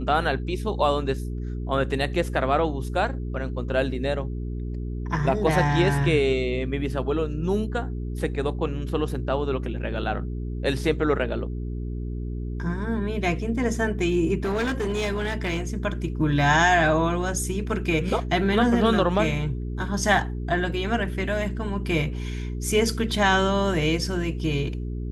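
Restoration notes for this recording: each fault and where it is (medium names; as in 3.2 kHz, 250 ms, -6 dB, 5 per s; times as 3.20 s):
hum 60 Hz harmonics 7 -30 dBFS
14.43–15.61 s: clipped -21.5 dBFS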